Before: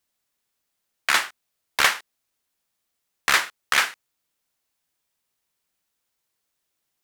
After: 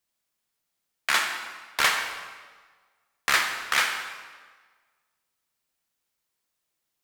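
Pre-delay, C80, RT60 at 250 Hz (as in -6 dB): 4 ms, 7.0 dB, 1.4 s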